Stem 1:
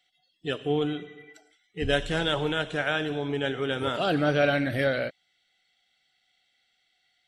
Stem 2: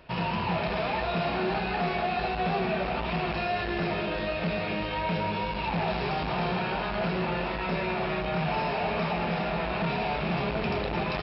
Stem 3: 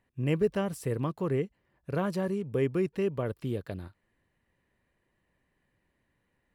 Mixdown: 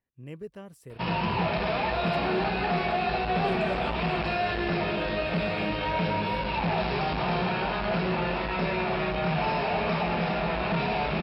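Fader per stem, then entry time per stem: -16.5, +1.5, -13.5 dB; 1.55, 0.90, 0.00 s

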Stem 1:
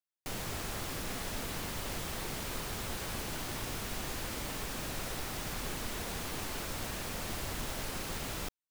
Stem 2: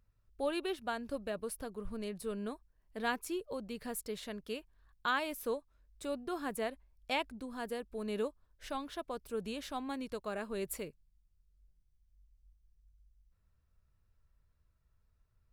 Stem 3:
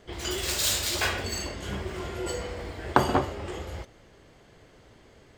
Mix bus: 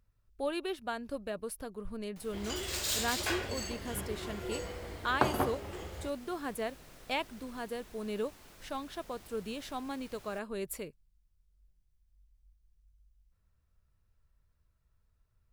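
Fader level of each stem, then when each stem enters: -17.5, +0.5, -7.0 dB; 1.90, 0.00, 2.25 s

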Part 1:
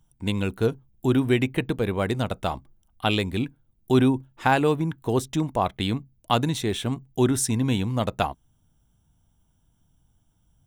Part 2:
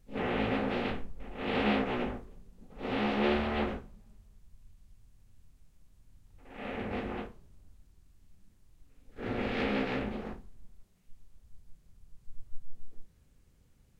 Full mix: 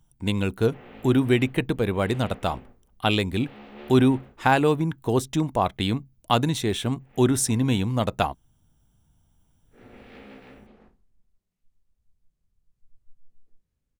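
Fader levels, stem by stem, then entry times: +1.0, -15.0 dB; 0.00, 0.55 s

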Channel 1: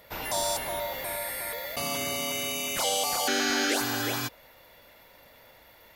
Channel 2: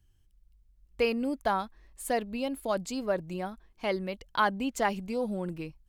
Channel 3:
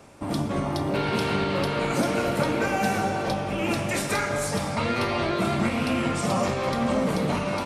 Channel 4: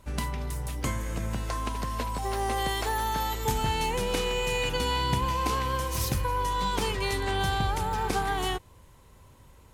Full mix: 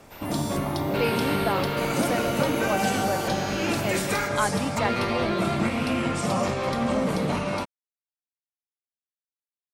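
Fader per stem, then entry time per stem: -8.0 dB, 0.0 dB, -0.5 dB, off; 0.00 s, 0.00 s, 0.00 s, off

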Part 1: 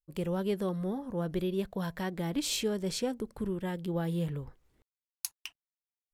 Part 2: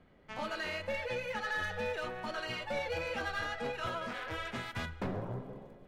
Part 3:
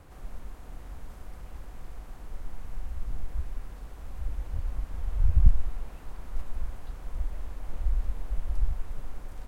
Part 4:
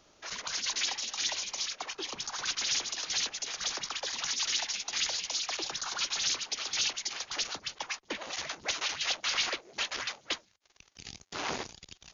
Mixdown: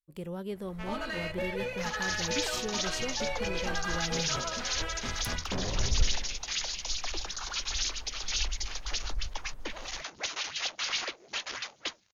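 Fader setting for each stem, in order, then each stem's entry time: -6.0, +1.5, -8.5, -2.0 dB; 0.00, 0.50, 0.55, 1.55 s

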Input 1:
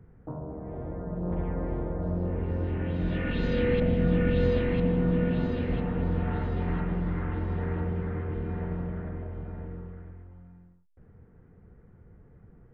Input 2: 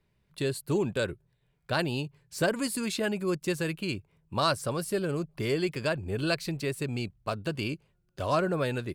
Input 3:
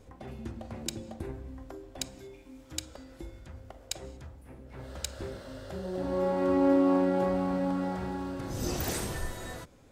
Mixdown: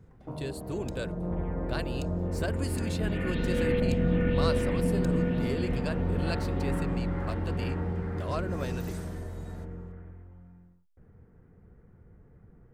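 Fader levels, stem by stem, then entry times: -1.5, -7.5, -14.5 dB; 0.00, 0.00, 0.00 s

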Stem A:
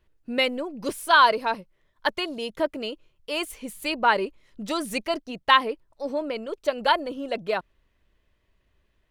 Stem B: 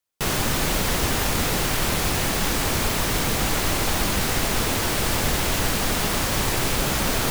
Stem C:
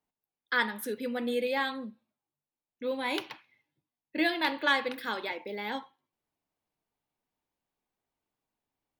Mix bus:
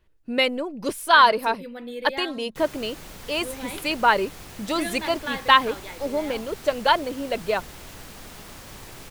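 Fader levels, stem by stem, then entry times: +2.0, -19.0, -4.5 dB; 0.00, 2.35, 0.60 s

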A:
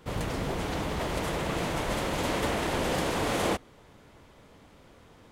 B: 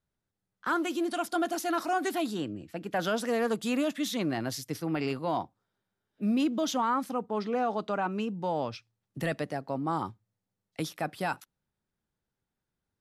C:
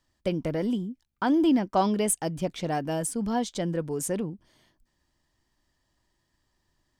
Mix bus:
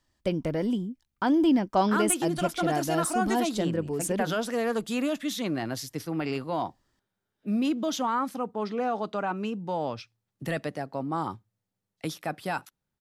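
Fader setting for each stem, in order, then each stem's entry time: off, +0.5 dB, 0.0 dB; off, 1.25 s, 0.00 s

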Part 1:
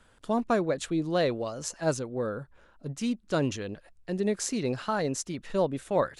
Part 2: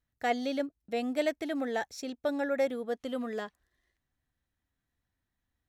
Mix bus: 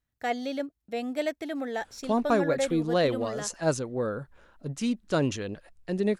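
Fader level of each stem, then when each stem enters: +1.5, 0.0 dB; 1.80, 0.00 s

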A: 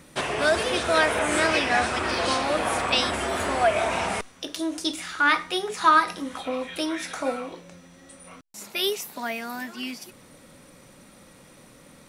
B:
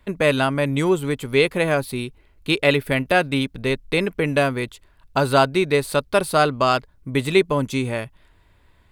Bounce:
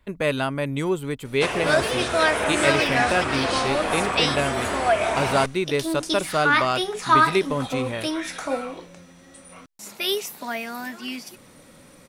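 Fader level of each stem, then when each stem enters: +1.0, -5.0 dB; 1.25, 0.00 s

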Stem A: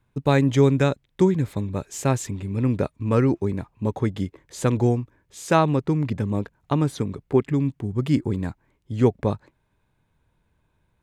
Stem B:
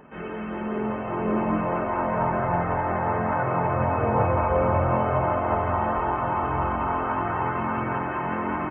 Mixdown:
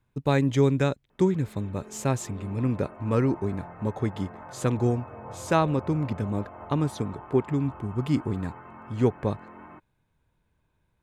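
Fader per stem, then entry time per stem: -4.0, -19.0 dB; 0.00, 1.10 s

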